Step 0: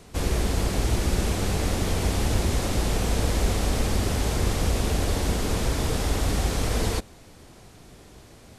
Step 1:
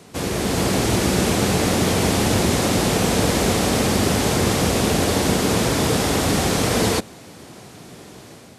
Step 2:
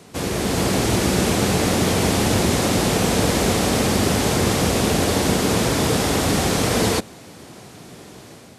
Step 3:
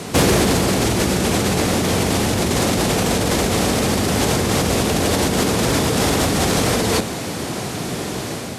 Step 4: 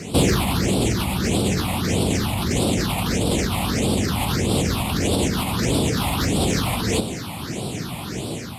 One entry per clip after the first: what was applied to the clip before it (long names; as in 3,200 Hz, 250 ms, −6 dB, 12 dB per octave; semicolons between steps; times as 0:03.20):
Chebyshev high-pass filter 150 Hz, order 2; automatic gain control gain up to 5 dB; level +5 dB
no processing that can be heard
compressor whose output falls as the input rises −26 dBFS, ratio −1; sine wavefolder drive 5 dB, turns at −8.5 dBFS
all-pass phaser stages 6, 1.6 Hz, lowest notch 410–1,800 Hz; level −1.5 dB